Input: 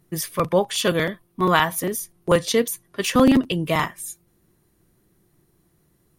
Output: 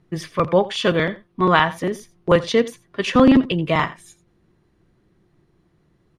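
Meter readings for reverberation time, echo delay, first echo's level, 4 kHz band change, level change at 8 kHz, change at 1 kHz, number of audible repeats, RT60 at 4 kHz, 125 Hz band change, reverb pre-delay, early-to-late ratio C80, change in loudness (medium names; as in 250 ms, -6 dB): no reverb, 85 ms, -18.5 dB, 0.0 dB, -11.0 dB, +2.5 dB, 1, no reverb, +2.5 dB, no reverb, no reverb, +2.0 dB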